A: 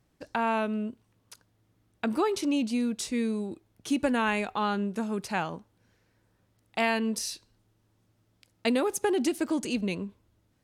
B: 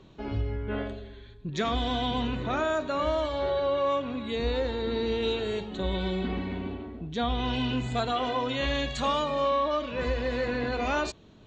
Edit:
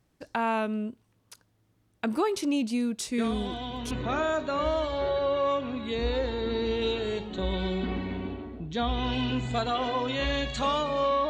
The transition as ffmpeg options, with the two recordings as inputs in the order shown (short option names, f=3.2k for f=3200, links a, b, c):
-filter_complex "[1:a]asplit=2[a][b];[0:a]apad=whole_dur=11.29,atrim=end=11.29,atrim=end=3.912[c];[b]atrim=start=2.318:end=9.7[d];[a]atrim=start=1.59:end=2.32,asetpts=PTS-STARTPTS,volume=-7dB,afade=t=in:d=0.004:c=hsin,afade=t=out:st=0.726:d=0.004:c=hsin,adelay=3180[e];[c][d]acrossfade=d=0.004:c1=hsin:c2=hsin[f];[f][e]amix=inputs=2:normalize=0"